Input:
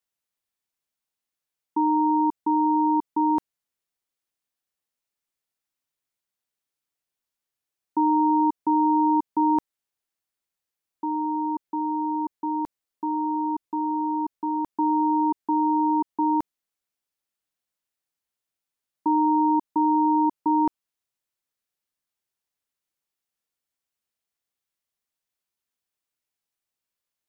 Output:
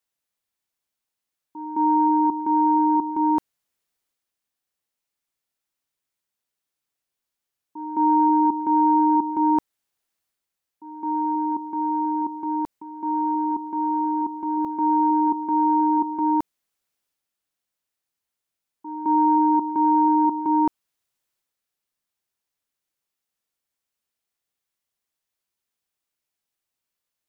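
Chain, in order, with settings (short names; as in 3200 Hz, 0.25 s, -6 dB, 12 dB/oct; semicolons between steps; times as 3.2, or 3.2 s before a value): pre-echo 0.214 s -13 dB; transient shaper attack -4 dB, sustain +4 dB; gain +2 dB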